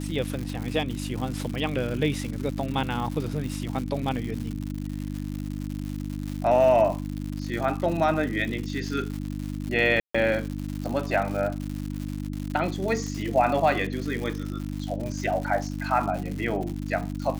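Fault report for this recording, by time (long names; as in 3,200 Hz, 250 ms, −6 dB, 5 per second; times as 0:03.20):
surface crackle 190 per second −31 dBFS
mains hum 50 Hz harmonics 6 −32 dBFS
0:10.00–0:10.14: drop-out 145 ms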